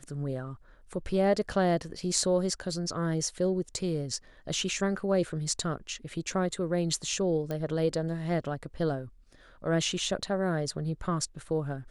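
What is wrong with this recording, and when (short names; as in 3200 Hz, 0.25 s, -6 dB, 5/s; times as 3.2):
7.51 pop -21 dBFS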